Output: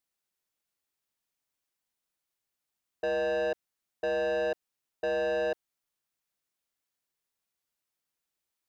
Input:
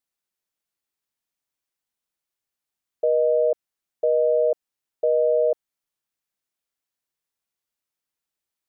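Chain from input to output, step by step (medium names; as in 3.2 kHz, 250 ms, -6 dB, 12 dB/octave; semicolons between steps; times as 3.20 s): saturation -27 dBFS, distortion -8 dB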